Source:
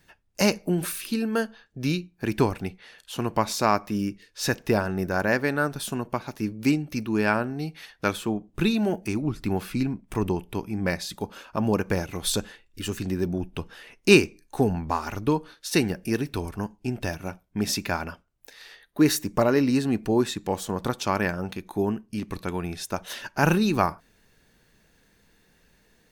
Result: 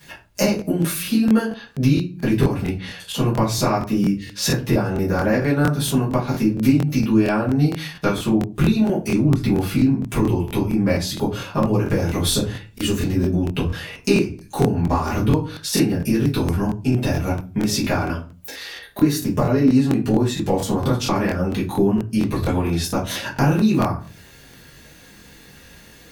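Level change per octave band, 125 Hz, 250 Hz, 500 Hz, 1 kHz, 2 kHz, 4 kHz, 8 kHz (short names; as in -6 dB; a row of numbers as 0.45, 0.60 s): +10.0, +7.5, +3.5, +2.5, +0.5, +4.5, +5.0 dB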